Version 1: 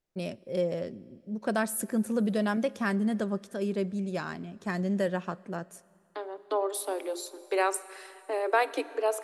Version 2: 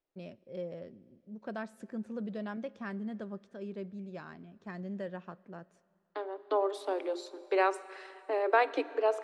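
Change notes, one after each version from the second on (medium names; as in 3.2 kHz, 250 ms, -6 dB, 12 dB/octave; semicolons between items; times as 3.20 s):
first voice -10.5 dB; master: add distance through air 150 m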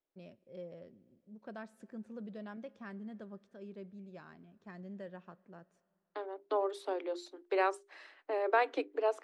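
first voice -7.0 dB; second voice: send off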